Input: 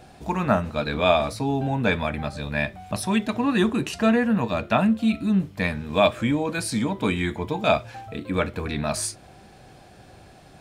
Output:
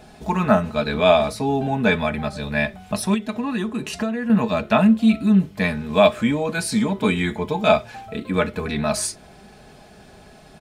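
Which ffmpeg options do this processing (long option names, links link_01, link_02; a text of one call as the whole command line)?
ffmpeg -i in.wav -filter_complex "[0:a]aecho=1:1:4.7:0.55,asettb=1/sr,asplit=3[link_01][link_02][link_03];[link_01]atrim=end=3.144[link_04];[link_02]atrim=start=3.14:end=4.3,asetpts=PTS-STARTPTS,afade=type=in:duration=0.004:curve=qsin,afade=type=out:start_time=1.156:duration=0.004:curve=qsin,acompressor=threshold=-23dB:ratio=16[link_05];[link_03]atrim=start=4.296[link_06];[link_04][link_05]acrossfade=duration=0.004:curve1=hsin:curve2=qsin[link_07];[link_07][link_06]acrossfade=duration=0.004:curve1=qsin:curve2=hsin,volume=2dB" out.wav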